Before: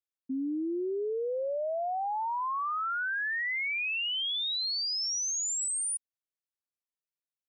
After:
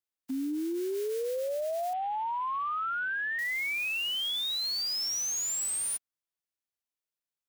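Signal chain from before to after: spectral whitening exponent 0.3; 1.93–3.39 Chebyshev low-pass 3200 Hz, order 4

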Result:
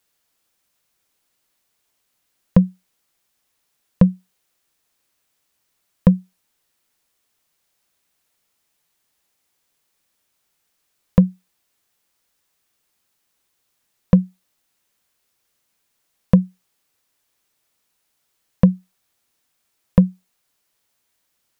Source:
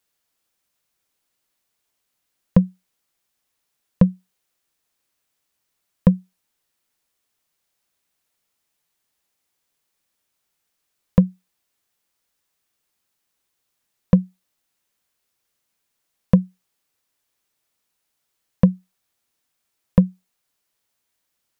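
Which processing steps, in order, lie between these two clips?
limiter -6 dBFS, peak gain reduction 3.5 dB; gain +4.5 dB

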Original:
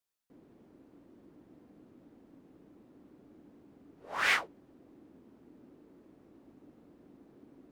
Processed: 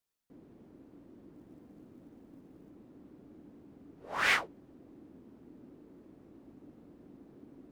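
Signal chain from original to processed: low shelf 340 Hz +5.5 dB; 1.35–2.7 short-mantissa float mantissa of 4-bit

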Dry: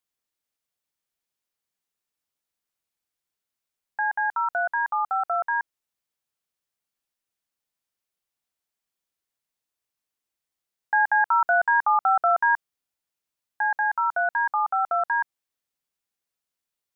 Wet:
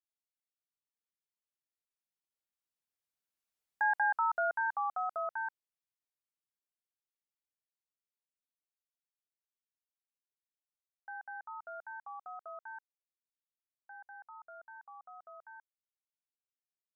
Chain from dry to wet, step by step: Doppler pass-by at 3.84, 18 m/s, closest 12 m; gain -4 dB

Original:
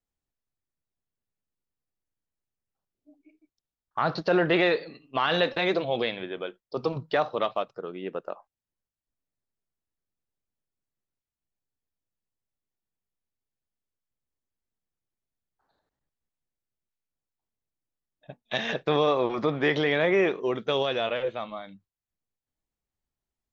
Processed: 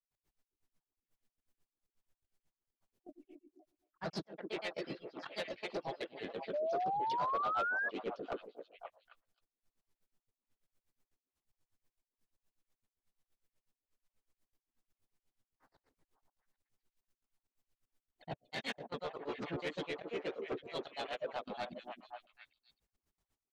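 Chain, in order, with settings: notches 60/120/180/240/300/360/420/480/540/600 Hz; limiter -22 dBFS, peak gain reduction 10 dB; reverse; compressor 5:1, threshold -41 dBFS, peak gain reduction 13 dB; reverse; step gate ".x.xxx.xxxx" 194 bpm -24 dB; grains 80 ms, grains 8.2/s, spray 11 ms, pitch spread up and down by 0 st; harmoniser -3 st -15 dB, +3 st -2 dB, +4 st -16 dB; delay with a stepping band-pass 0.265 s, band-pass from 330 Hz, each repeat 1.4 oct, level -5 dB; soft clip -40 dBFS, distortion -12 dB; painted sound rise, 6.53–7.89, 580–1700 Hz -43 dBFS; gain +8 dB

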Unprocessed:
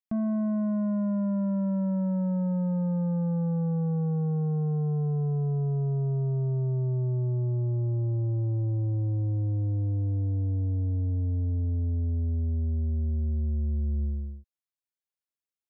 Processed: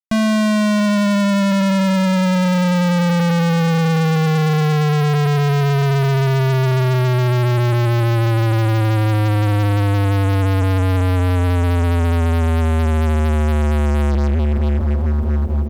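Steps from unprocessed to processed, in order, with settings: feedback echo 0.671 s, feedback 50%, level -11 dB; fuzz box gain 48 dB, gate -57 dBFS; gain -1.5 dB

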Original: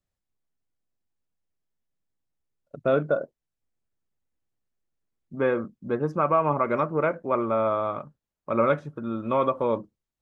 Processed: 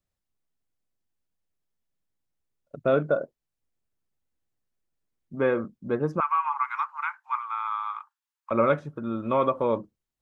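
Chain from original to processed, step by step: 6.2–8.51 steep high-pass 850 Hz 96 dB/oct

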